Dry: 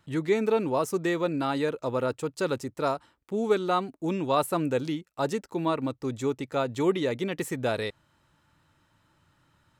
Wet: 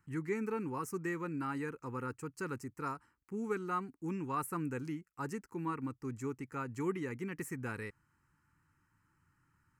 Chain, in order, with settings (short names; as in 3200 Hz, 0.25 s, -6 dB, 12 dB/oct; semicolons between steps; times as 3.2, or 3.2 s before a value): fixed phaser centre 1500 Hz, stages 4; gain -6.5 dB